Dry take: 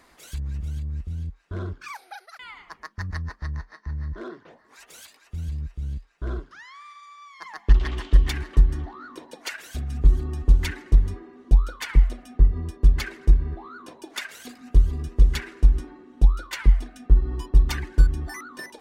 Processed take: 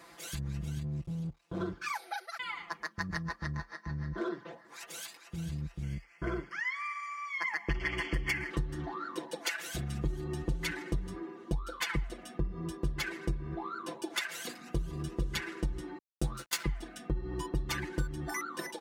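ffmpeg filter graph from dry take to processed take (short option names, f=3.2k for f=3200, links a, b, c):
-filter_complex "[0:a]asettb=1/sr,asplit=3[a][b][c];[a]atrim=end=0.844[d];[b]atrim=start=0.84:end=1.61,asetpts=PTS-STARTPTS,afade=t=in:d=0.004:c=qsin,afade=t=out:st=0.766:d=0.004:c=qsin,equalizer=f=1.6k:w=2.3:g=-10.5,aeval=exprs='max(val(0),0)':c=same[e];[c]atrim=start=1.606[f];[d][e]acrossfade=d=0.004:c1=hsin:c2=qsin[g];[g][f]acrossfade=d=0.004:c1=qsin:c2=hsin,asettb=1/sr,asplit=3[h][i][j];[h]atrim=end=5.824[k];[i]atrim=start=5.82:end=8.5,asetpts=PTS-STARTPTS,afade=t=in:d=0.004:c=qsin,afade=t=out:st=2.676:d=0.004:c=qsin,asuperstop=centerf=3800:order=20:qfactor=4.6,equalizer=f=2.1k:t=o:w=0.37:g=15[l];[j]atrim=start=8.496[m];[k][l]acrossfade=d=0.004:c1=hsin:c2=qsin[n];[n][m]acrossfade=d=0.004:c1=qsin:c2=hsin,asettb=1/sr,asplit=3[o][p][q];[o]atrim=end=15.984[r];[p]atrim=start=15.98:end=16.64,asetpts=PTS-STARTPTS,afade=t=in:d=0.004:c=qsin,afade=t=out:st=0.656:d=0.004:c=qsin,bass=f=250:g=1,treble=f=4k:g=9,aeval=exprs='sgn(val(0))*max(abs(val(0))-0.0188,0)':c=same,asplit=2[s][t];[t]adelay=14,volume=-2.5dB[u];[s][u]amix=inputs=2:normalize=0,atrim=end_sample=29106[v];[q]atrim=start=16.636[w];[r][v]acrossfade=d=0.004:c1=hsin:c2=qsin[x];[x][w]acrossfade=d=0.004:c1=qsin:c2=hsin,highpass=87,aecho=1:1:5.9:0.89,acompressor=threshold=-31dB:ratio=3"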